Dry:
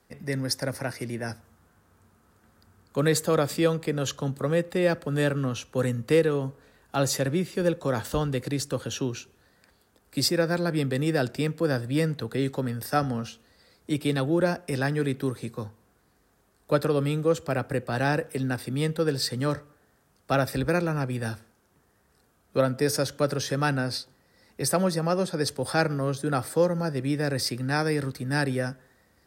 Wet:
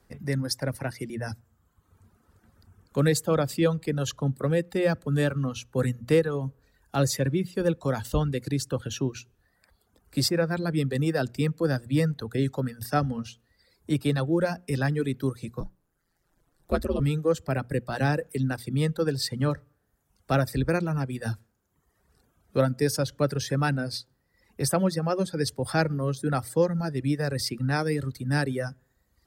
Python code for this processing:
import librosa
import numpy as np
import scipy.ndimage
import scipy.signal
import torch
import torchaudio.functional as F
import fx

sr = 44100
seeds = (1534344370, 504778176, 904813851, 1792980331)

y = fx.ring_mod(x, sr, carrier_hz=85.0, at=(15.6, 17.0))
y = fx.hum_notches(y, sr, base_hz=60, count=4)
y = fx.dereverb_blind(y, sr, rt60_s=1.0)
y = fx.low_shelf(y, sr, hz=160.0, db=11.0)
y = F.gain(torch.from_numpy(y), -1.5).numpy()